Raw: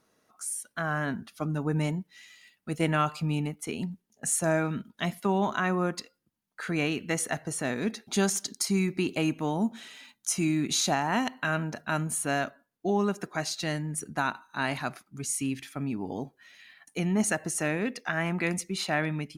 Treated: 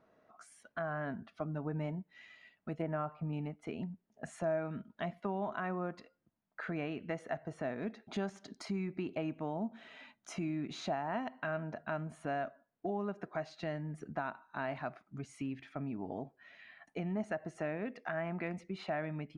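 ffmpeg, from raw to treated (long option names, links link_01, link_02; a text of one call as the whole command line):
ffmpeg -i in.wav -filter_complex "[0:a]asettb=1/sr,asplit=3[link_01][link_02][link_03];[link_01]atrim=end=2.824[link_04];[link_02]atrim=start=2.82:end=3.33,asetpts=PTS-STARTPTS,afade=type=in:duration=0.004:curve=qsin,afade=type=out:start_time=0.506:duration=0.004:curve=qsin,lowpass=1600[link_05];[link_03]atrim=start=3.326[link_06];[link_04][link_05]acrossfade=duration=0.004:curve1=hsin:curve2=qsin[link_07];[link_07][link_06]acrossfade=duration=0.004:curve1=qsin:curve2=hsin,lowpass=2100,equalizer=frequency=650:width_type=o:width=0.3:gain=9,acompressor=threshold=-43dB:ratio=2" out.wav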